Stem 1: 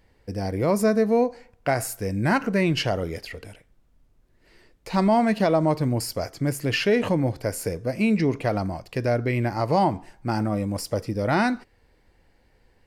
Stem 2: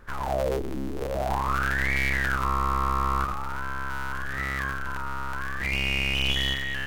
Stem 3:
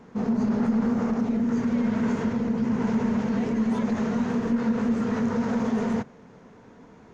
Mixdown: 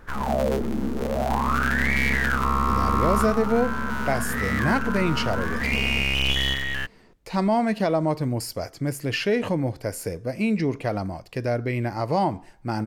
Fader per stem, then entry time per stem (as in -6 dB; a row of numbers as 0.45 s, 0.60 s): -2.0 dB, +2.5 dB, -7.5 dB; 2.40 s, 0.00 s, 0.00 s